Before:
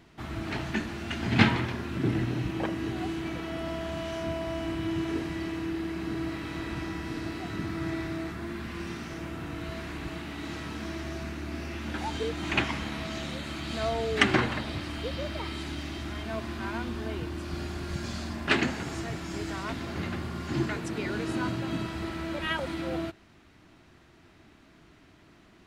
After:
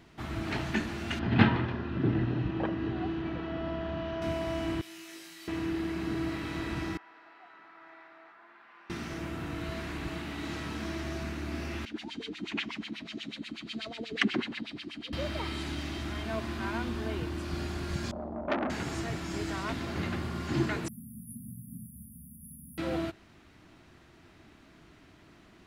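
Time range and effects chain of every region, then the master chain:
0:01.19–0:04.22: high-frequency loss of the air 280 metres + notch filter 2,200 Hz, Q 8.4
0:04.81–0:05.48: first difference + comb filter 5.7 ms, depth 45% + flutter between parallel walls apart 3.1 metres, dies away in 0.26 s
0:06.97–0:08.90: four-pole ladder band-pass 1,200 Hz, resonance 30% + notch filter 1,100 Hz, Q 16
0:11.85–0:15.13: drawn EQ curve 110 Hz 0 dB, 220 Hz +9 dB, 550 Hz −10 dB, 1,300 Hz −6 dB, 2,900 Hz +5 dB, 4,400 Hz +10 dB + auto-filter band-pass sine 8.2 Hz 280–3,000 Hz
0:18.11–0:18.70: low-pass with resonance 590 Hz, resonance Q 6.7 + phaser with its sweep stopped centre 450 Hz, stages 6 + saturating transformer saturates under 1,600 Hz
0:20.88–0:22.78: linear-phase brick-wall band-stop 260–9,500 Hz + spectral tilt +3.5 dB per octave
whole clip: no processing

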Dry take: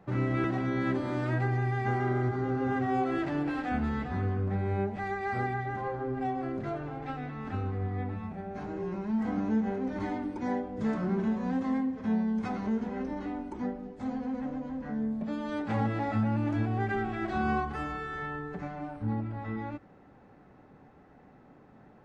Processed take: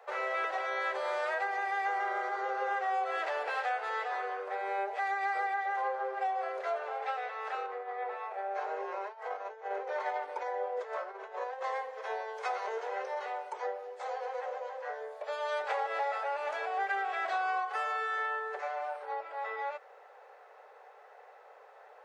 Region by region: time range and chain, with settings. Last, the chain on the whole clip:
0:07.66–0:11.64: compressor whose output falls as the input rises −34 dBFS + high-shelf EQ 3,400 Hz −9.5 dB
whole clip: Butterworth high-pass 450 Hz 72 dB per octave; downward compressor, threshold −35 dBFS; level +6 dB

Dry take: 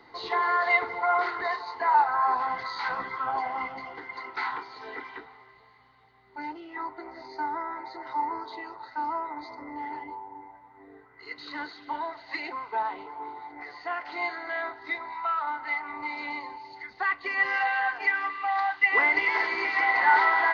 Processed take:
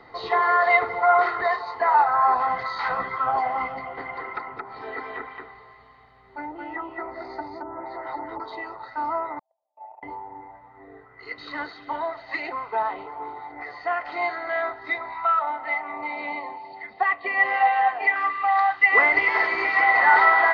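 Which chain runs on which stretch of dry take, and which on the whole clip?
0:03.76–0:08.40: treble cut that deepens with the level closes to 400 Hz, closed at −29 dBFS + single-tap delay 222 ms −3 dB
0:09.39–0:10.03: flat-topped band-pass 690 Hz, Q 3.1 + spectral tilt +3 dB per octave + noise gate −46 dBFS, range −36 dB
0:15.39–0:18.16: loudspeaker in its box 110–4,000 Hz, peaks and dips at 130 Hz −9 dB, 190 Hz +4 dB, 690 Hz +7 dB, 1,500 Hz −8 dB + notch filter 1,200 Hz, Q 22
whole clip: high-shelf EQ 3,400 Hz −11.5 dB; comb filter 1.6 ms, depth 39%; level +6.5 dB

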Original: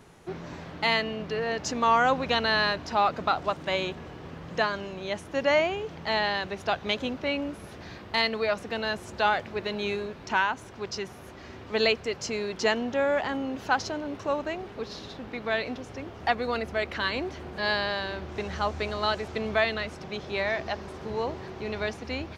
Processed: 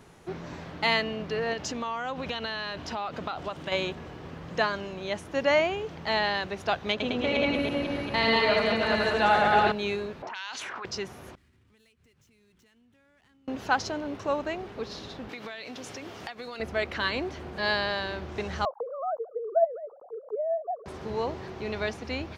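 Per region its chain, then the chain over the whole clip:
0:01.53–0:03.72: parametric band 3,100 Hz +5 dB 0.4 octaves + downward compressor, threshold −29 dBFS
0:06.92–0:09.72: delay that plays each chunk backwards 226 ms, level −2 dB + low-pass filter 3,300 Hz 6 dB per octave + reverse bouncing-ball delay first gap 80 ms, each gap 1.3×, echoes 5, each echo −2 dB
0:10.22–0:10.85: envelope filter 600–4,600 Hz, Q 3, up, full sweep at −24.5 dBFS + envelope flattener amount 100%
0:11.35–0:13.48: running median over 9 samples + guitar amp tone stack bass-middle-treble 6-0-2 + downward compressor 16 to 1, threshold −59 dBFS
0:15.29–0:16.60: high-pass filter 130 Hz + high-shelf EQ 2,300 Hz +11.5 dB + downward compressor 10 to 1, threshold −35 dBFS
0:18.65–0:20.86: three sine waves on the formant tracks + Butterworth low-pass 1,100 Hz 48 dB per octave
whole clip: no processing

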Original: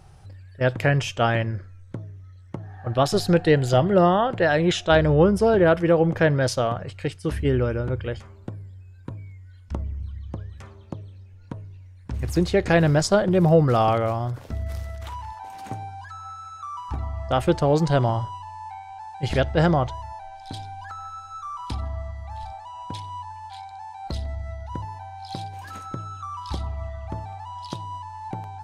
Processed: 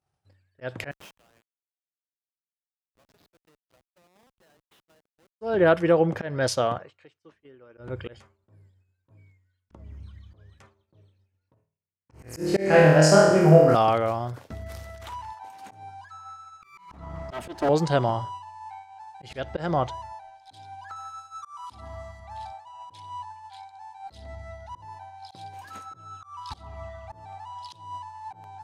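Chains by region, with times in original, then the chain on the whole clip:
0:00.91–0:05.41: treble cut that deepens with the level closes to 1,000 Hz, closed at −12.5 dBFS + first difference + comparator with hysteresis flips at −38 dBFS
0:06.78–0:07.78: downward compressor 10 to 1, threshold −35 dBFS + loudspeaker in its box 170–6,600 Hz, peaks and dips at 190 Hz −8 dB, 1,100 Hz +5 dB, 4,900 Hz −6 dB
0:11.54–0:13.75: noise gate −32 dBFS, range −9 dB + parametric band 3,600 Hz −15 dB 0.29 octaves + flutter between parallel walls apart 4.4 metres, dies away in 1 s
0:16.62–0:17.69: lower of the sound and its delayed copy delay 3.1 ms + low-shelf EQ 430 Hz +4 dB
0:20.96–0:22.20: high-pass filter 54 Hz + high-shelf EQ 5,400 Hz +8.5 dB
whole clip: downward expander −33 dBFS; high-pass filter 220 Hz 6 dB per octave; volume swells 227 ms

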